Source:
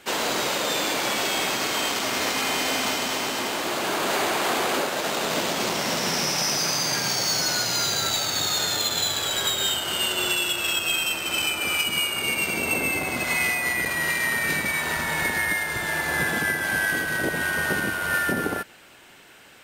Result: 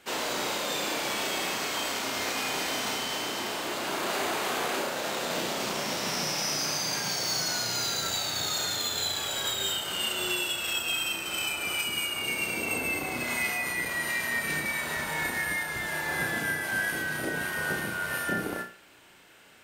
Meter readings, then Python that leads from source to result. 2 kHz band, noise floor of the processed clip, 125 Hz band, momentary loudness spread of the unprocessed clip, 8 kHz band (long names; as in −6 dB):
−5.5 dB, −49 dBFS, −5.5 dB, 3 LU, −5.5 dB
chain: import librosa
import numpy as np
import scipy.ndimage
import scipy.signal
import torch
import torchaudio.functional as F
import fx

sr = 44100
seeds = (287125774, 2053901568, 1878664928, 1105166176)

y = fx.room_flutter(x, sr, wall_m=5.7, rt60_s=0.36)
y = F.gain(torch.from_numpy(y), -7.0).numpy()